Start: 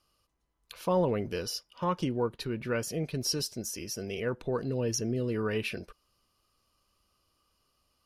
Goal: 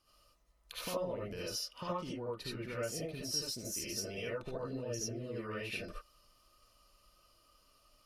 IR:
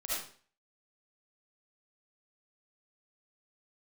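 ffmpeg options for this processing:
-filter_complex "[0:a]acompressor=threshold=-41dB:ratio=6[a];[1:a]atrim=start_sample=2205,afade=t=out:st=0.14:d=0.01,atrim=end_sample=6615,asetrate=42336,aresample=44100[b];[a][b]afir=irnorm=-1:irlink=0,volume=3.5dB"

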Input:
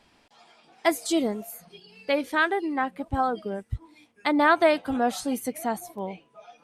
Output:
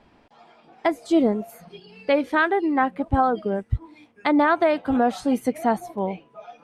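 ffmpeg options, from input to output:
-af "asetnsamples=n=441:p=0,asendcmd='1.49 lowpass f 1800',lowpass=f=1k:p=1,alimiter=limit=-16.5dB:level=0:latency=1:release=363,volume=7.5dB"

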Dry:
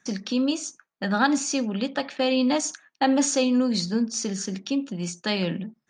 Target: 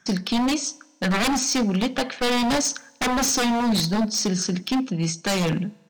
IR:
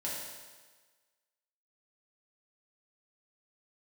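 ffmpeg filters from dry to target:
-filter_complex "[0:a]aeval=exprs='0.0794*(abs(mod(val(0)/0.0794+3,4)-2)-1)':c=same,asetrate=41625,aresample=44100,atempo=1.05946,asplit=2[a][b];[1:a]atrim=start_sample=2205[c];[b][c]afir=irnorm=-1:irlink=0,volume=-24.5dB[d];[a][d]amix=inputs=2:normalize=0,volume=5.5dB"

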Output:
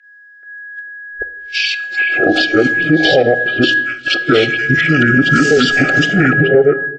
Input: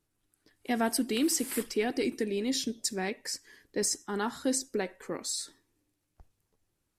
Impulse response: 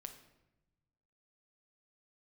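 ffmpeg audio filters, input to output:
-filter_complex "[0:a]areverse,aeval=exprs='val(0)+0.01*sin(2*PI*2800*n/s)':c=same,aemphasis=mode=reproduction:type=cd,agate=range=-32dB:threshold=-42dB:ratio=16:detection=peak,lowshelf=f=470:t=q:w=3:g=-11,acompressor=threshold=-44dB:ratio=5,asetrate=26222,aresample=44100,atempo=1.68179,acrossover=split=3200[a][b];[b]acompressor=threshold=-56dB:ratio=4:attack=1:release=60[c];[a][c]amix=inputs=2:normalize=0,asuperstop=centerf=1000:order=20:qfactor=2.2,acrossover=split=2200[d][e];[d]adelay=430[f];[f][e]amix=inputs=2:normalize=0,asplit=2[g][h];[1:a]atrim=start_sample=2205,asetrate=52920,aresample=44100,lowpass=4.5k[i];[h][i]afir=irnorm=-1:irlink=0,volume=4dB[j];[g][j]amix=inputs=2:normalize=0,alimiter=level_in=35dB:limit=-1dB:release=50:level=0:latency=1,volume=-1dB"

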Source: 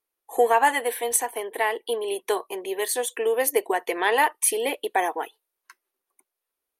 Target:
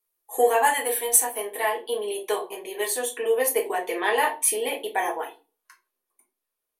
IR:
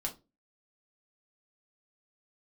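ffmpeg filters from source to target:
-filter_complex "[0:a]asetnsamples=n=441:p=0,asendcmd='1.69 highshelf g 4',highshelf=f=6.2k:g=11.5[a];[1:a]atrim=start_sample=2205,asetrate=35280,aresample=44100[b];[a][b]afir=irnorm=-1:irlink=0,volume=-4.5dB"

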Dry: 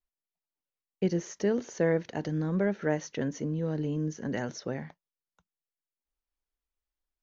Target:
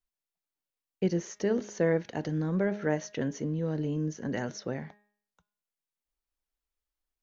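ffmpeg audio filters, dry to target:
-af "bandreject=f=206.8:t=h:w=4,bandreject=f=413.6:t=h:w=4,bandreject=f=620.4:t=h:w=4,bandreject=f=827.2:t=h:w=4,bandreject=f=1.034k:t=h:w=4,bandreject=f=1.2408k:t=h:w=4,bandreject=f=1.4476k:t=h:w=4,bandreject=f=1.6544k:t=h:w=4,bandreject=f=1.8612k:t=h:w=4,bandreject=f=2.068k:t=h:w=4,bandreject=f=2.2748k:t=h:w=4,bandreject=f=2.4816k:t=h:w=4,bandreject=f=2.6884k:t=h:w=4,bandreject=f=2.8952k:t=h:w=4,bandreject=f=3.102k:t=h:w=4,bandreject=f=3.3088k:t=h:w=4,bandreject=f=3.5156k:t=h:w=4,bandreject=f=3.7224k:t=h:w=4,bandreject=f=3.9292k:t=h:w=4"

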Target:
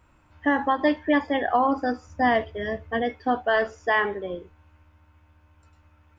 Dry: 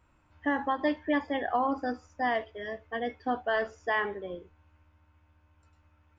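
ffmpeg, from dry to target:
-filter_complex "[0:a]asettb=1/sr,asplit=3[a][b][c];[a]atrim=end=2.074[d];[b]atrim=start=2.07:end=3.02,asetpts=PTS-STARTPTS,afade=t=in:d=0.004:c=qsin,afade=t=out:st=0.946:d=0.004:c=qsin,equalizer=f=110:w=0.63:g=11.5[e];[c]atrim=start=3.016[f];[d][e]acrossfade=d=0.004:c1=hsin:c2=qsin[g];[g][f]acrossfade=d=0.004:c1=qsin:c2=hsin,volume=6.5dB"

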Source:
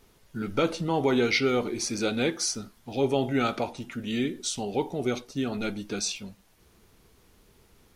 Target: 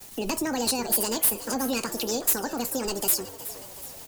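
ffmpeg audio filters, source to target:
-filter_complex "[0:a]agate=range=-33dB:threshold=-56dB:ratio=3:detection=peak,equalizer=f=140:t=o:w=3:g=6,acrossover=split=140[a][b];[b]acompressor=threshold=-40dB:ratio=6[c];[a][c]amix=inputs=2:normalize=0,asetrate=85995,aresample=44100,crystalizer=i=8:c=0,asplit=2[d][e];[e]aeval=exprs='(mod(11.2*val(0)+1,2)-1)/11.2':c=same,volume=-4dB[f];[d][f]amix=inputs=2:normalize=0,asplit=6[g][h][i][j][k][l];[h]adelay=370,afreqshift=86,volume=-14.5dB[m];[i]adelay=740,afreqshift=172,volume=-19.7dB[n];[j]adelay=1110,afreqshift=258,volume=-24.9dB[o];[k]adelay=1480,afreqshift=344,volume=-30.1dB[p];[l]adelay=1850,afreqshift=430,volume=-35.3dB[q];[g][m][n][o][p][q]amix=inputs=6:normalize=0"

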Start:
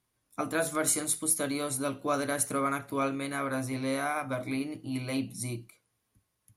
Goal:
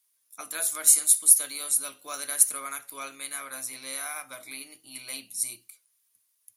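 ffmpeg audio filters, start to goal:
-af "aderivative,volume=8.5dB"

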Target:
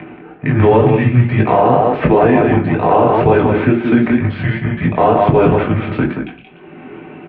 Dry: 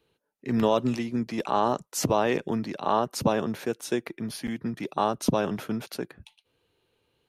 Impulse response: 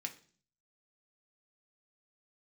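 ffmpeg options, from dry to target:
-filter_complex "[0:a]aemphasis=mode=reproduction:type=riaa,acrossover=split=2300[a][b];[a]acompressor=mode=upward:threshold=-21dB:ratio=2.5[c];[b]aeval=exprs='(mod(119*val(0)+1,2)-1)/119':c=same[d];[c][d]amix=inputs=2:normalize=0,aecho=1:1:178:0.473,flanger=delay=18:depth=6.5:speed=2.1,asplit=2[e][f];[f]aeval=exprs='sgn(val(0))*max(abs(val(0))-0.0112,0)':c=same,volume=-11.5dB[g];[e][g]amix=inputs=2:normalize=0[h];[1:a]atrim=start_sample=2205[i];[h][i]afir=irnorm=-1:irlink=0,highpass=f=340:t=q:w=0.5412,highpass=f=340:t=q:w=1.307,lowpass=f=3.2k:t=q:w=0.5176,lowpass=f=3.2k:t=q:w=0.7071,lowpass=f=3.2k:t=q:w=1.932,afreqshift=-120,alimiter=level_in=23dB:limit=-1dB:release=50:level=0:latency=1,volume=-1dB"

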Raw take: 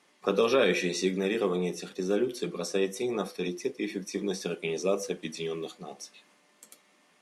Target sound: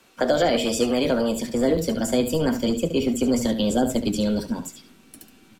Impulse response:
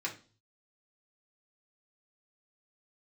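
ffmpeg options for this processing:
-filter_complex "[0:a]acrossover=split=460[a][b];[b]acompressor=threshold=-31dB:ratio=6[c];[a][c]amix=inputs=2:normalize=0,aecho=1:1:92:0.282,acrossover=split=120|2500[d][e][f];[d]aeval=exprs='0.00841*sin(PI/2*5.62*val(0)/0.00841)':c=same[g];[g][e][f]amix=inputs=3:normalize=0,asubboost=boost=5.5:cutoff=200,asetrate=56889,aresample=44100,volume=7dB"

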